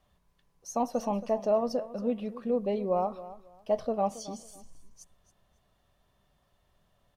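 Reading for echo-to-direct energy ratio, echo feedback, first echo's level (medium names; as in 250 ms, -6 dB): -16.0 dB, 23%, -16.0 dB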